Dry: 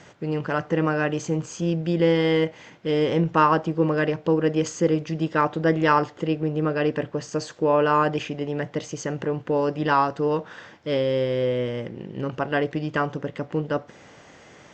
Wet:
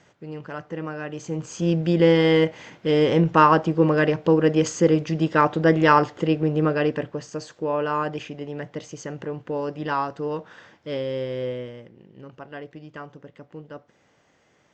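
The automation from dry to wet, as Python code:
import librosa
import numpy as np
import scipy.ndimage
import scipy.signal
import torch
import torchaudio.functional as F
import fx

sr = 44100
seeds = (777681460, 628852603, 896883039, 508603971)

y = fx.gain(x, sr, db=fx.line((1.05, -9.0), (1.71, 3.0), (6.64, 3.0), (7.37, -5.0), (11.49, -5.0), (11.89, -14.0)))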